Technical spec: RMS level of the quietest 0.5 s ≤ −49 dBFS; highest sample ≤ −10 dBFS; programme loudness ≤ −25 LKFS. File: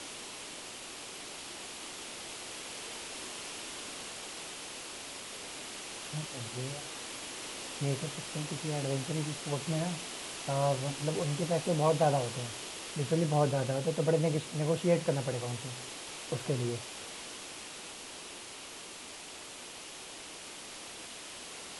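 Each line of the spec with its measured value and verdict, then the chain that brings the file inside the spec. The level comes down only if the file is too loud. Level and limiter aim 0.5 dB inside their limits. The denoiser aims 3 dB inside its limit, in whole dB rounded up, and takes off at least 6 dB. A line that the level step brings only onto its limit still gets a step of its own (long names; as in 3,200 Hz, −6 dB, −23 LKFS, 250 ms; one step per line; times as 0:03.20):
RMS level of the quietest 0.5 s −46 dBFS: out of spec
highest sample −15.0 dBFS: in spec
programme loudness −35.5 LKFS: in spec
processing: broadband denoise 6 dB, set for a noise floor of −46 dBFS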